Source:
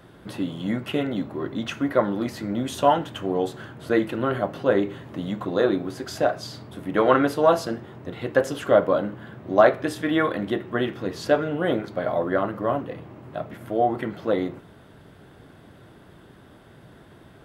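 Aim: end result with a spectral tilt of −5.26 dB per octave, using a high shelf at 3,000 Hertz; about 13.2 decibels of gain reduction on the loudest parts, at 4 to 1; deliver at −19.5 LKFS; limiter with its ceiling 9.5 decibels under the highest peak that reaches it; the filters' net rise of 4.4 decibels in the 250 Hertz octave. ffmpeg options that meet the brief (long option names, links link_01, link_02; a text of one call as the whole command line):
ffmpeg -i in.wav -af "equalizer=frequency=250:width_type=o:gain=5.5,highshelf=frequency=3000:gain=5.5,acompressor=threshold=-27dB:ratio=4,volume=13.5dB,alimiter=limit=-8.5dB:level=0:latency=1" out.wav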